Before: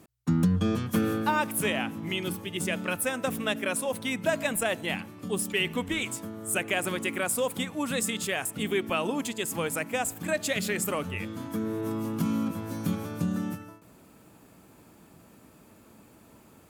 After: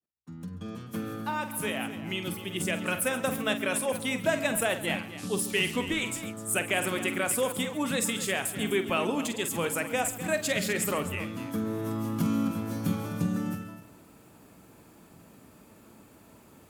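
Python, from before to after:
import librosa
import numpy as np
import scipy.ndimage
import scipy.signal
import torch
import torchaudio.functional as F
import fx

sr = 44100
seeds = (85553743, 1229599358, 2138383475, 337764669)

y = fx.fade_in_head(x, sr, length_s=2.83)
y = fx.dmg_noise_band(y, sr, seeds[0], low_hz=3100.0, high_hz=11000.0, level_db=-47.0, at=(5.17, 5.75), fade=0.02)
y = fx.echo_multitap(y, sr, ms=(47, 137, 254), db=(-10.5, -17.0, -13.0))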